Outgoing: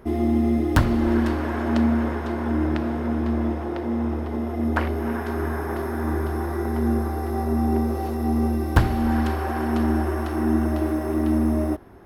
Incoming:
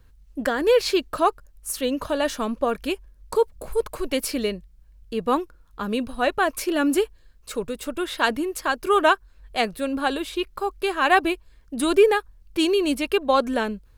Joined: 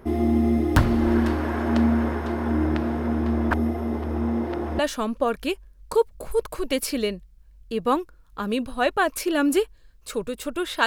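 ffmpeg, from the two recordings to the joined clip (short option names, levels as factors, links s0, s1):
-filter_complex "[0:a]apad=whole_dur=10.86,atrim=end=10.86,asplit=2[s0][s1];[s0]atrim=end=3.512[s2];[s1]atrim=start=3.508:end=4.792,asetpts=PTS-STARTPTS,areverse[s3];[1:a]atrim=start=2.198:end=8.27[s4];[s2][s3]acrossfade=d=0.004:c1=hsin:c2=hsin[s5];[s5][s4]acrossfade=d=0.004:c1=hsin:c2=hsin"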